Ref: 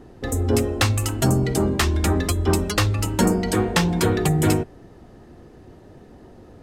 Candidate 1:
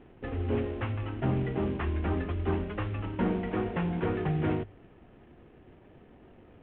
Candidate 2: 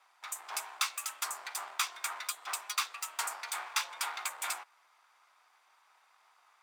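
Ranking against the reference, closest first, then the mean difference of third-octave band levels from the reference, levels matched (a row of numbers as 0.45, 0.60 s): 1, 2; 6.5, 16.5 dB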